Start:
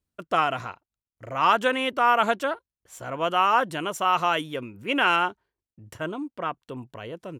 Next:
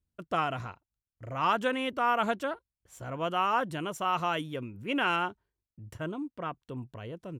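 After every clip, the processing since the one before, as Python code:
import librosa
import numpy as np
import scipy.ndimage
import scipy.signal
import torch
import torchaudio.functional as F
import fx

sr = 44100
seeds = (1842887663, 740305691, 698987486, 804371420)

y = fx.low_shelf(x, sr, hz=210.0, db=12.0)
y = y * librosa.db_to_amplitude(-7.5)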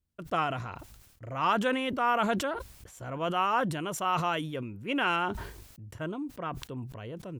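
y = fx.sustainer(x, sr, db_per_s=51.0)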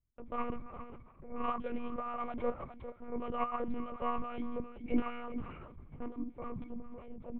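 y = fx.octave_resonator(x, sr, note='C#', decay_s=0.1)
y = y + 10.0 ** (-12.0 / 20.0) * np.pad(y, (int(407 * sr / 1000.0), 0))[:len(y)]
y = fx.lpc_monotone(y, sr, seeds[0], pitch_hz=240.0, order=8)
y = y * librosa.db_to_amplitude(3.5)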